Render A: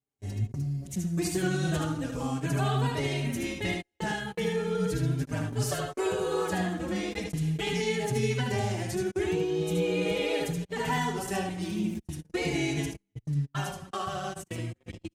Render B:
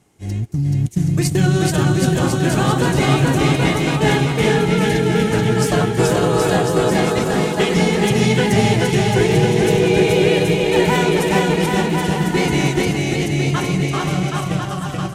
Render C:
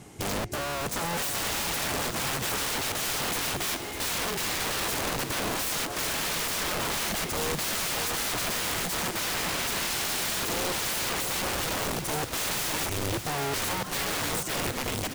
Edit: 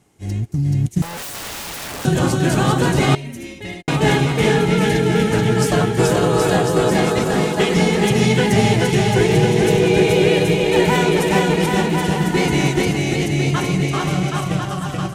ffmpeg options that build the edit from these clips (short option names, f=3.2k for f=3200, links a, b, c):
-filter_complex "[1:a]asplit=3[a][b][c];[a]atrim=end=1.022[d];[2:a]atrim=start=1.018:end=2.052[e];[b]atrim=start=2.048:end=3.152[f];[0:a]atrim=start=3.148:end=3.882[g];[c]atrim=start=3.878[h];[d][e]acrossfade=d=0.004:c1=hsin:c2=hsin[i];[i][f]acrossfade=d=0.004:c1=hsin:c2=hsin[j];[j][g]acrossfade=d=0.004:c1=hsin:c2=hsin[k];[k][h]acrossfade=d=0.004:c1=hsin:c2=hsin"